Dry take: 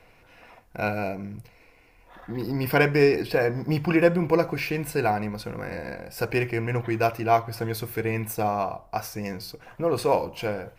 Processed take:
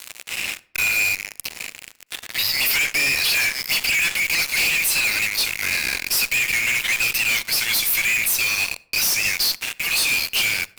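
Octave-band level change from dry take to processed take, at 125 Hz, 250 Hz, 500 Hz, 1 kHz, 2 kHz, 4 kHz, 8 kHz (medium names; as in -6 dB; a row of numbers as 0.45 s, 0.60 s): -14.0 dB, -15.0 dB, -17.5 dB, -8.5 dB, +12.5 dB, +19.5 dB, +21.5 dB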